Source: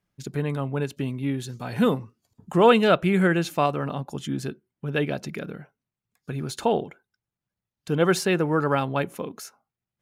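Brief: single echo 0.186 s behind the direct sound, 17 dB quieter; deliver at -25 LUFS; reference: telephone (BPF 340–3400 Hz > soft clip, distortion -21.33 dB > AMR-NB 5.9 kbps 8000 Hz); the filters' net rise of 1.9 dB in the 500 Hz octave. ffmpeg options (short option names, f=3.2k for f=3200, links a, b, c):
-af "highpass=340,lowpass=3.4k,equalizer=f=500:t=o:g=3.5,aecho=1:1:186:0.141,asoftclip=threshold=-7dB,volume=1dB" -ar 8000 -c:a libopencore_amrnb -b:a 5900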